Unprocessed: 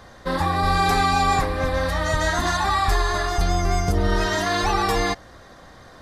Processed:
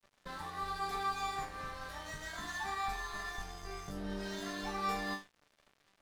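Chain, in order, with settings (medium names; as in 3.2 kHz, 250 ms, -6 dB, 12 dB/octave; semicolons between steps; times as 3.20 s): compression 2.5:1, threshold -28 dBFS, peak gain reduction 8.5 dB; chord resonator D3 sus4, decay 0.37 s; crossover distortion -57 dBFS; trim +6 dB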